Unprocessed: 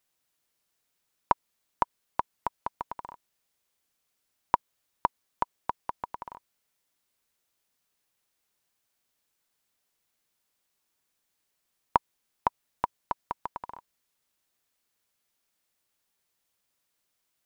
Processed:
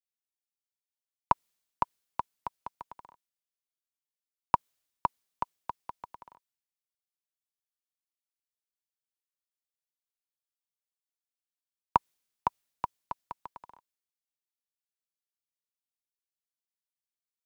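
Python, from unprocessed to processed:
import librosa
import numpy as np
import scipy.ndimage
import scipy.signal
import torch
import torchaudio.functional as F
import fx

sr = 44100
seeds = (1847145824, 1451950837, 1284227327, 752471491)

y = fx.band_widen(x, sr, depth_pct=70)
y = y * librosa.db_to_amplitude(-5.5)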